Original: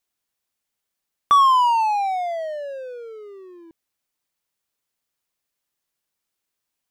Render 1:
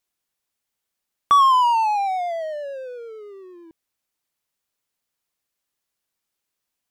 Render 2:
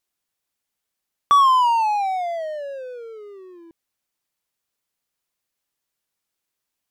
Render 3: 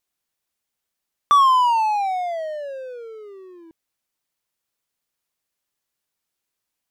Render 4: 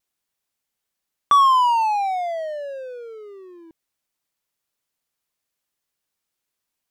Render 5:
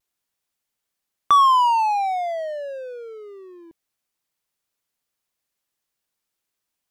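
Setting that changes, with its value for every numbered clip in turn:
vibrato, rate: 8.9, 5.2, 3.2, 0.73, 0.31 Hz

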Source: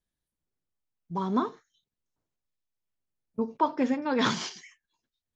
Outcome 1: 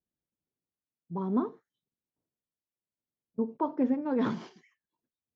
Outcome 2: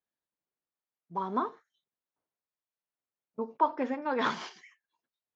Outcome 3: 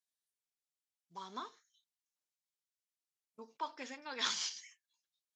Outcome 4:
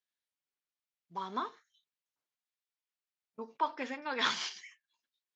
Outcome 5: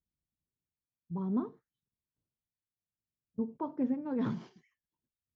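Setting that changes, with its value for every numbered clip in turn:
band-pass, frequency: 280, 940, 6900, 2700, 110 Hz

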